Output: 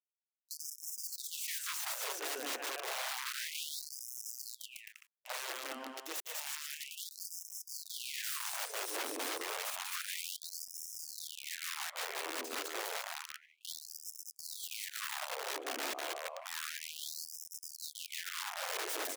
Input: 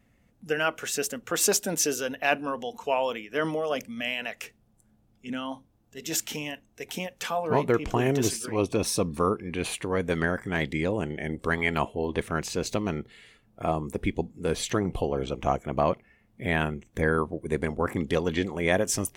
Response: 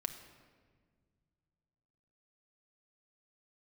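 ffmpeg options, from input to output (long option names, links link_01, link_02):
-filter_complex "[0:a]aeval=exprs='sgn(val(0))*max(abs(val(0))-0.015,0)':channel_layout=same,areverse,acompressor=threshold=-37dB:ratio=12,areverse,equalizer=frequency=5400:width_type=o:width=1.6:gain=-5.5,asplit=2[link_01][link_02];[link_02]aecho=0:1:200|350|462.5|546.9|610.2:0.631|0.398|0.251|0.158|0.1[link_03];[link_01][link_03]amix=inputs=2:normalize=0,aeval=exprs='(mod(79.4*val(0)+1,2)-1)/79.4':channel_layout=same,afftfilt=real='re*gte(b*sr/1024,250*pow(5200/250,0.5+0.5*sin(2*PI*0.3*pts/sr)))':imag='im*gte(b*sr/1024,250*pow(5200/250,0.5+0.5*sin(2*PI*0.3*pts/sr)))':win_size=1024:overlap=0.75,volume=6dB"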